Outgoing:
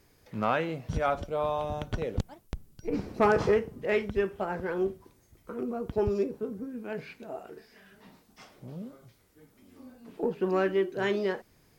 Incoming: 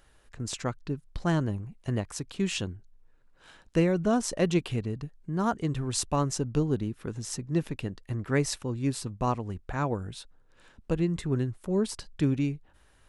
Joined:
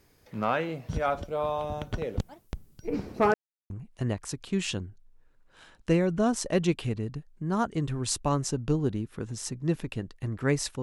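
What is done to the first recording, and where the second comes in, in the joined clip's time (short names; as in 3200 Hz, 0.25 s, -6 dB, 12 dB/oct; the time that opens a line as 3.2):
outgoing
3.34–3.7 mute
3.7 switch to incoming from 1.57 s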